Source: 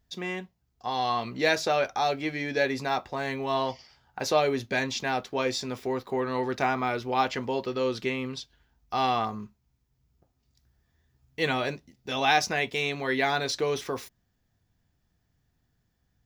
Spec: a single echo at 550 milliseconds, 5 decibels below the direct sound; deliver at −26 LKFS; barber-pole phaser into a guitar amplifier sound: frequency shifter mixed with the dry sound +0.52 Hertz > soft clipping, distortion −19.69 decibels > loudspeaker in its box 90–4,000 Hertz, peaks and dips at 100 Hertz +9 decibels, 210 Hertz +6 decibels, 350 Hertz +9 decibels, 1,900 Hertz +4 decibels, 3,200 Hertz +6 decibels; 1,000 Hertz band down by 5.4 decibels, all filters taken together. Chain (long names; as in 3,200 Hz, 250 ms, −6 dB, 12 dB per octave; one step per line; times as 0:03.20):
parametric band 1,000 Hz −8.5 dB
single-tap delay 550 ms −5 dB
frequency shifter mixed with the dry sound +0.52 Hz
soft clipping −21 dBFS
loudspeaker in its box 90–4,000 Hz, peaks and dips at 100 Hz +9 dB, 210 Hz +6 dB, 350 Hz +9 dB, 1,900 Hz +4 dB, 3,200 Hz +6 dB
level +5.5 dB